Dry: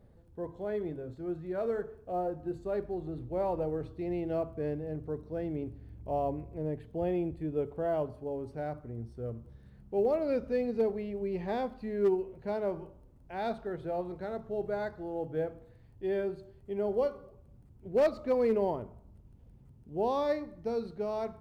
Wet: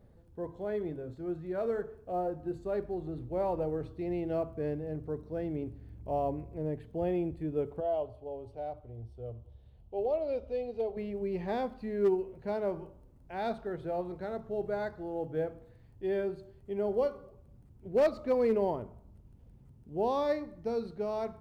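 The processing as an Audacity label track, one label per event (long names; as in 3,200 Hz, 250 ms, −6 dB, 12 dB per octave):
7.800000	10.970000	drawn EQ curve 110 Hz 0 dB, 160 Hz −17 dB, 700 Hz +1 dB, 1,700 Hz −16 dB, 3,100 Hz +2 dB, 5,200 Hz −9 dB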